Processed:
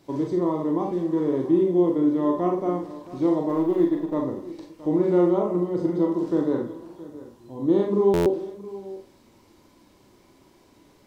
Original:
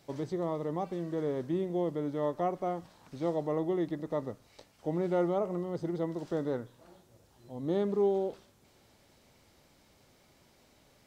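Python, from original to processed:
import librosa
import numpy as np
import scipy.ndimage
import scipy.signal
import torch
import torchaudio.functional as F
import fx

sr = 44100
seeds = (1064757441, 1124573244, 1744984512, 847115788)

p1 = fx.law_mismatch(x, sr, coded='A', at=(3.49, 4.14))
p2 = fx.low_shelf(p1, sr, hz=320.0, db=3.5)
p3 = fx.small_body(p2, sr, hz=(320.0, 990.0), ring_ms=35, db=12)
p4 = p3 + fx.echo_multitap(p3, sr, ms=(214, 671), db=(-19.5, -17.0), dry=0)
p5 = fx.rev_schroeder(p4, sr, rt60_s=0.31, comb_ms=30, drr_db=1.0)
y = fx.buffer_glitch(p5, sr, at_s=(8.13,), block=512, repeats=10)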